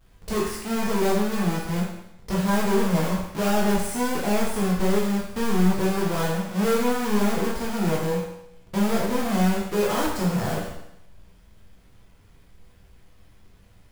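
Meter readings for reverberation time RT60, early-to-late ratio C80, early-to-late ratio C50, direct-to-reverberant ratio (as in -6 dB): 0.80 s, 5.0 dB, 2.0 dB, -5.5 dB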